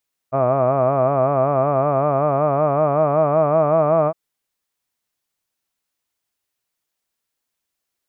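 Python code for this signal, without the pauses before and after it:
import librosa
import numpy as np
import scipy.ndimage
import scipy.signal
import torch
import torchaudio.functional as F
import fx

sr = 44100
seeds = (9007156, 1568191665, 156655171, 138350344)

y = fx.vowel(sr, seeds[0], length_s=3.81, word='hud', hz=129.0, glide_st=3.5, vibrato_hz=5.3, vibrato_st=1.05)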